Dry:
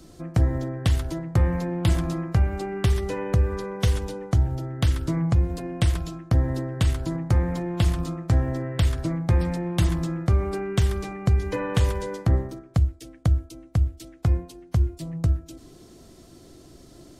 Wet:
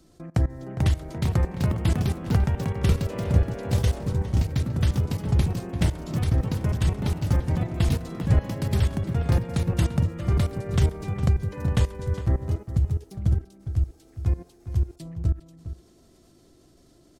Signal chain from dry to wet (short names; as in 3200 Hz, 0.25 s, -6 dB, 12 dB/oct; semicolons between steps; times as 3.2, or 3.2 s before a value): level quantiser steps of 19 dB; outdoor echo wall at 70 m, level -12 dB; echoes that change speed 0.499 s, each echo +3 st, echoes 3